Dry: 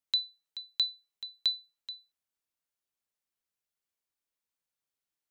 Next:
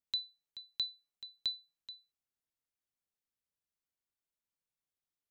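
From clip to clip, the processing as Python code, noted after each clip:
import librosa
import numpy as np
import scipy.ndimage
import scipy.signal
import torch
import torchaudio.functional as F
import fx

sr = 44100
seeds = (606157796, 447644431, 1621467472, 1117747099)

y = fx.low_shelf(x, sr, hz=310.0, db=8.5)
y = y * librosa.db_to_amplitude(-7.0)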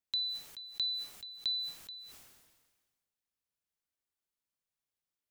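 y = fx.sustainer(x, sr, db_per_s=40.0)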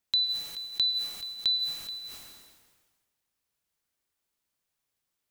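y = fx.rev_plate(x, sr, seeds[0], rt60_s=1.1, hf_ratio=0.85, predelay_ms=95, drr_db=10.0)
y = y * librosa.db_to_amplitude(8.0)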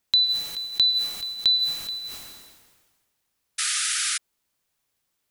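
y = fx.spec_paint(x, sr, seeds[1], shape='noise', start_s=3.58, length_s=0.6, low_hz=1200.0, high_hz=11000.0, level_db=-32.0)
y = y * librosa.db_to_amplitude(6.5)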